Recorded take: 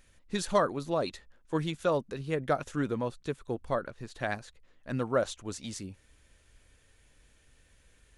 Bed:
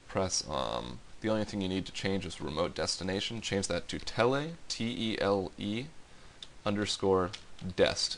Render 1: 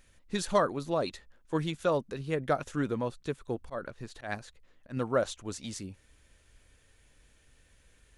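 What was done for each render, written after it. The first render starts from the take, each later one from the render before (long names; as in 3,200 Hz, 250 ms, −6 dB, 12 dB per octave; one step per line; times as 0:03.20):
0:03.46–0:04.97: volume swells 128 ms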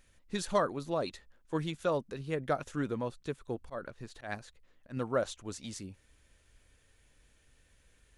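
level −3 dB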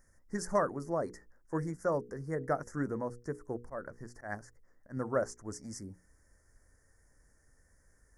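elliptic band-stop filter 1,900–5,200 Hz, stop band 40 dB
mains-hum notches 60/120/180/240/300/360/420/480 Hz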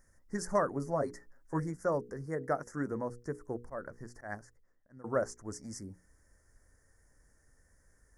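0:00.73–0:01.60: comb filter 7.3 ms
0:02.26–0:02.92: low-shelf EQ 79 Hz −11.5 dB
0:04.17–0:05.04: fade out, to −20.5 dB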